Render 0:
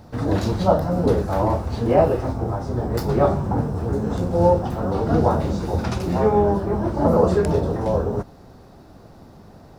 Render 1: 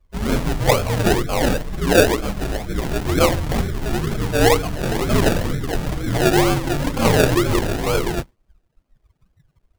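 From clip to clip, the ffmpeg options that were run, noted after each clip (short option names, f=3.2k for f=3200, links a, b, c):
-af "afreqshift=-61,afftdn=nr=29:nf=-27,acrusher=samples=33:mix=1:aa=0.000001:lfo=1:lforange=19.8:lforate=2.1,volume=1.5dB"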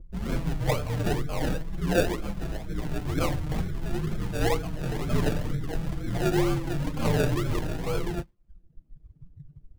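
-filter_complex "[0:a]bass=f=250:g=6,treble=f=4k:g=-2,acrossover=split=370|4200[a][b][c];[a]acompressor=mode=upward:threshold=-18dB:ratio=2.5[d];[d][b][c]amix=inputs=3:normalize=0,flanger=delay=5.7:depth=1.1:regen=44:speed=0.48:shape=sinusoidal,volume=-8dB"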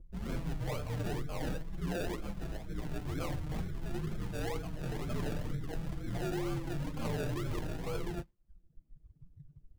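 -af "alimiter=limit=-19.5dB:level=0:latency=1:release=14,volume=-7.5dB"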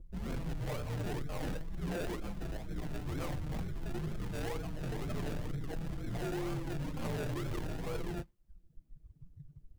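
-af "asoftclip=type=tanh:threshold=-33.5dB,volume=2dB"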